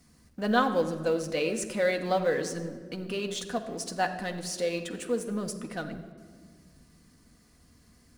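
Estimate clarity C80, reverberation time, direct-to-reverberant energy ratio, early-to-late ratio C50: 11.5 dB, 1.8 s, 4.5 dB, 10.0 dB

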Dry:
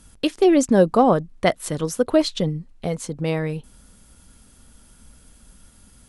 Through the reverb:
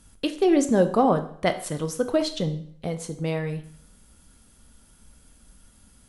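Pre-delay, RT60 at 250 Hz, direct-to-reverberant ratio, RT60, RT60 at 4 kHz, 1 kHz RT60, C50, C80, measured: 7 ms, 0.55 s, 8.0 dB, 0.60 s, 0.55 s, 0.60 s, 12.5 dB, 15.5 dB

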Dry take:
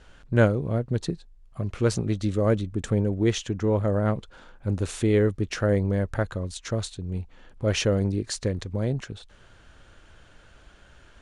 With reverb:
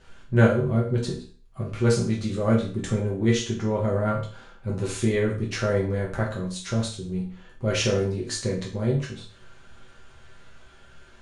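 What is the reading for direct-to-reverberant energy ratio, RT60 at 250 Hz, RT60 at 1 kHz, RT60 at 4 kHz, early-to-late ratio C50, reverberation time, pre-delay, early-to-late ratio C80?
−4.0 dB, 0.40 s, 0.40 s, 0.40 s, 7.0 dB, 0.40 s, 5 ms, 11.5 dB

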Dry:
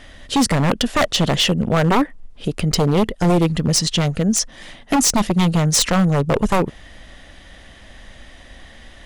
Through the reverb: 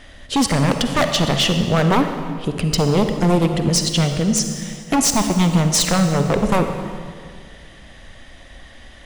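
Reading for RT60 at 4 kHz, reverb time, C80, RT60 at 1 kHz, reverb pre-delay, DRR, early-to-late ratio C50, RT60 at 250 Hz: 1.6 s, 2.0 s, 7.5 dB, 1.8 s, 39 ms, 6.0 dB, 6.5 dB, 2.4 s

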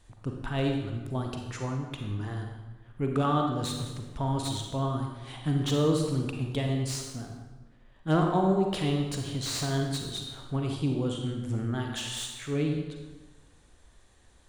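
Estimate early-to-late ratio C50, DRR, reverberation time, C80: 3.5 dB, 2.0 dB, 1.2 s, 5.5 dB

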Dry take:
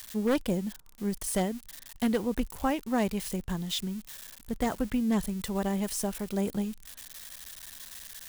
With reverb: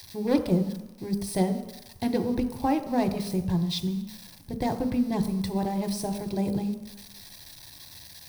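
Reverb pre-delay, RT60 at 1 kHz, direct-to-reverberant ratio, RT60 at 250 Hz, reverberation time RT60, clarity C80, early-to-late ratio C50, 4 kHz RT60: 5 ms, 1.1 s, 6.0 dB, 0.80 s, 1.0 s, 11.5 dB, 10.0 dB, 1.0 s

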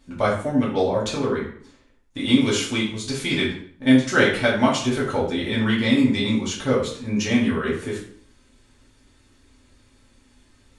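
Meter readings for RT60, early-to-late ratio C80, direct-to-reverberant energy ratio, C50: 0.55 s, 9.0 dB, −7.0 dB, 4.5 dB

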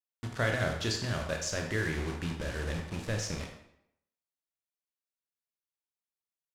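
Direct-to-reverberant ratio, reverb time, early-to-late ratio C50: 1.5 dB, 0.75 s, 5.0 dB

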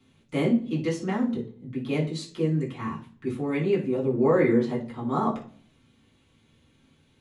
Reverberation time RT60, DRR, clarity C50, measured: 0.45 s, −6.5 dB, 10.5 dB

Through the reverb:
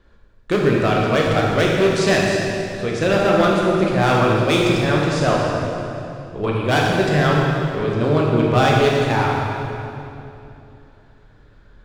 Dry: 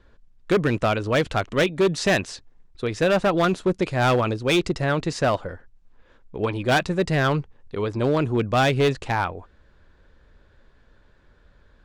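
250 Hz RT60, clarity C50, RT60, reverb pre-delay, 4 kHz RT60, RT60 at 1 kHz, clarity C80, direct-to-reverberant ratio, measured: 3.6 s, −1.0 dB, 2.9 s, 14 ms, 2.3 s, 2.7 s, 0.5 dB, −3.0 dB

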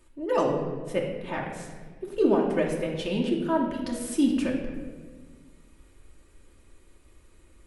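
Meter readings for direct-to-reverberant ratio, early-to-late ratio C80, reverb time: −2.0 dB, 6.0 dB, 1.5 s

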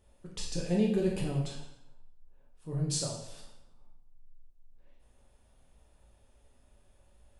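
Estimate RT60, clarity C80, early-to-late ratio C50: 0.80 s, 7.0 dB, 4.0 dB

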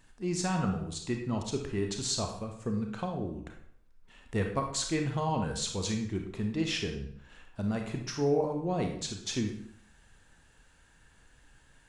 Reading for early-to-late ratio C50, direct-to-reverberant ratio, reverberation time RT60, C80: 5.5 dB, 3.0 dB, 0.65 s, 9.5 dB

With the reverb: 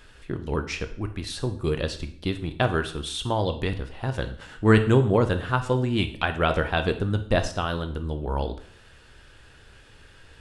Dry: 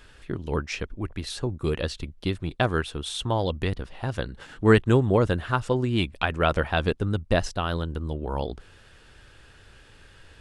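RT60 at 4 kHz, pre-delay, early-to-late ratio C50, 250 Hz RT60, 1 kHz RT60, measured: 0.50 s, 7 ms, 12.5 dB, 0.55 s, 0.55 s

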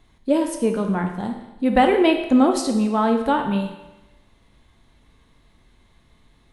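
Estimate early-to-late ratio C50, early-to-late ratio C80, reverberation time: 7.0 dB, 9.0 dB, 1.0 s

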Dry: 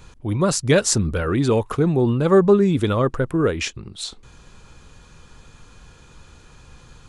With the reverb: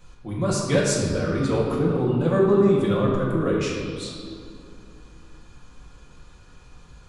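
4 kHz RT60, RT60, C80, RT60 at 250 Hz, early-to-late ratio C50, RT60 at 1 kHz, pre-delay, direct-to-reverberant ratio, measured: 1.5 s, 2.6 s, 2.0 dB, 3.4 s, 0.0 dB, 2.5 s, 4 ms, −6.0 dB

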